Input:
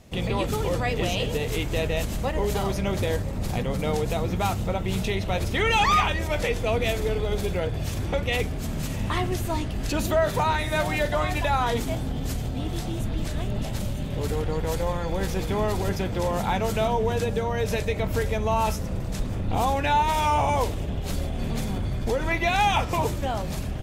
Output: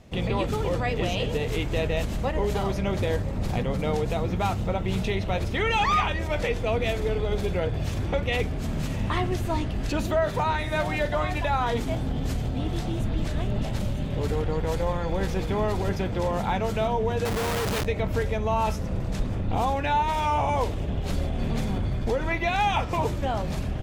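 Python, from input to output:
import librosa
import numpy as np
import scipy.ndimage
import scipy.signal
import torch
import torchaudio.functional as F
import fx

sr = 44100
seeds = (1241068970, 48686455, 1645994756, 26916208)

p1 = fx.high_shelf(x, sr, hz=6600.0, db=-11.5)
p2 = fx.rider(p1, sr, range_db=3, speed_s=0.5)
p3 = p1 + (p2 * librosa.db_to_amplitude(1.0))
p4 = fx.schmitt(p3, sr, flips_db=-37.5, at=(17.25, 17.85))
y = p4 * librosa.db_to_amplitude(-7.0)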